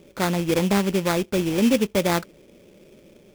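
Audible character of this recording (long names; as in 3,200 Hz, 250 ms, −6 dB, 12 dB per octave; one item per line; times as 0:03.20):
aliases and images of a low sample rate 2,900 Hz, jitter 20%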